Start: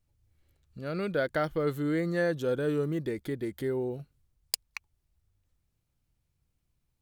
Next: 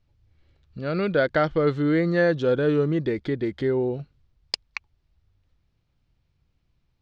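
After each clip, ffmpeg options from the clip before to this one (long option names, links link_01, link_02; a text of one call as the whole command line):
ffmpeg -i in.wav -af "lowpass=frequency=5000:width=0.5412,lowpass=frequency=5000:width=1.3066,volume=7.5dB" out.wav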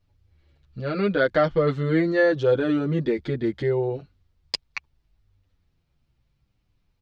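ffmpeg -i in.wav -filter_complex "[0:a]asplit=2[link_01][link_02];[link_02]adelay=7.8,afreqshift=-0.73[link_03];[link_01][link_03]amix=inputs=2:normalize=1,volume=3.5dB" out.wav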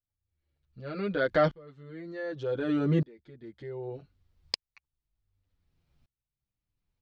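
ffmpeg -i in.wav -filter_complex "[0:a]asplit=2[link_01][link_02];[link_02]alimiter=limit=-18dB:level=0:latency=1:release=82,volume=1dB[link_03];[link_01][link_03]amix=inputs=2:normalize=0,aeval=exprs='val(0)*pow(10,-31*if(lt(mod(-0.66*n/s,1),2*abs(-0.66)/1000),1-mod(-0.66*n/s,1)/(2*abs(-0.66)/1000),(mod(-0.66*n/s,1)-2*abs(-0.66)/1000)/(1-2*abs(-0.66)/1000))/20)':channel_layout=same,volume=-4.5dB" out.wav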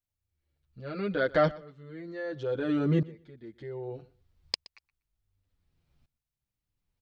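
ffmpeg -i in.wav -af "aecho=1:1:122|244:0.0891|0.0143" out.wav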